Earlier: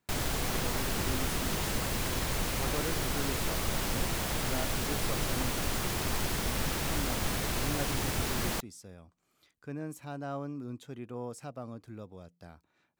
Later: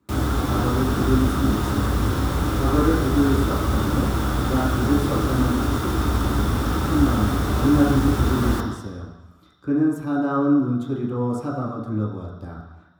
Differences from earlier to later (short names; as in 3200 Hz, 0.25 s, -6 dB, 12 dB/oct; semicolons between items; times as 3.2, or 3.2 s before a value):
background -3.5 dB; reverb: on, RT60 1.0 s